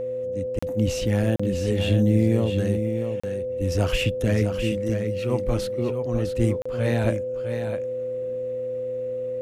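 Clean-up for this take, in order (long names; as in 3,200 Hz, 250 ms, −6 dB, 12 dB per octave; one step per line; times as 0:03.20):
hum removal 119.8 Hz, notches 5
notch filter 510 Hz, Q 30
repair the gap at 0:00.59/0:01.36/0:03.20/0:06.62, 35 ms
echo removal 657 ms −7.5 dB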